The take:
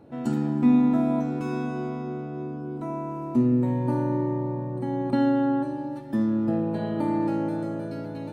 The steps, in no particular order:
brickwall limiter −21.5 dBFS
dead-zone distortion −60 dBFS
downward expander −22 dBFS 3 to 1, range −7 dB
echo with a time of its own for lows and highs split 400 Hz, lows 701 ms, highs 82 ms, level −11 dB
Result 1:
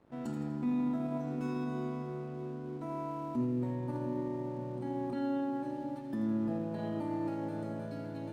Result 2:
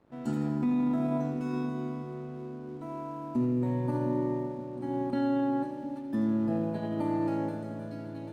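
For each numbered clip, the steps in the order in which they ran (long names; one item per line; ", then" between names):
brickwall limiter, then downward expander, then echo with a time of its own for lows and highs, then dead-zone distortion
downward expander, then brickwall limiter, then dead-zone distortion, then echo with a time of its own for lows and highs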